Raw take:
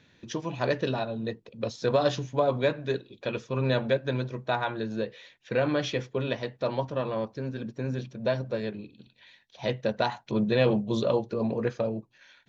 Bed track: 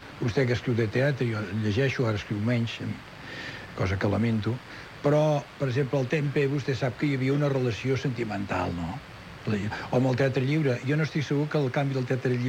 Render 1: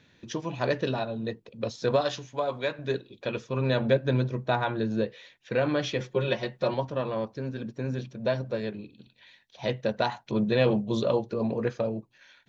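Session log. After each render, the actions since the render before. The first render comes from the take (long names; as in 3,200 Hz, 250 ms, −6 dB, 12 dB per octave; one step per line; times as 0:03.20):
0:02.01–0:02.79: low-shelf EQ 500 Hz −10.5 dB
0:03.80–0:05.07: low-shelf EQ 410 Hz +6 dB
0:06.00–0:06.74: comb filter 5.5 ms, depth 97%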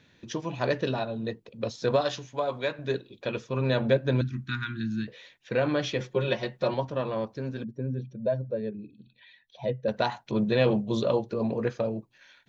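0:04.21–0:05.08: Chebyshev band-stop filter 280–1,400 Hz, order 3
0:07.64–0:09.88: expanding power law on the bin magnitudes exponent 1.6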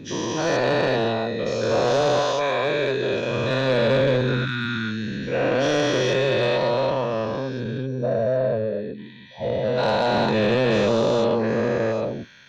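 every bin's largest magnitude spread in time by 480 ms
soft clipping −12.5 dBFS, distortion −17 dB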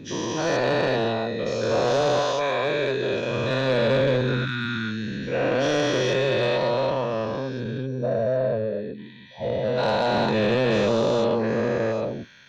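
level −1.5 dB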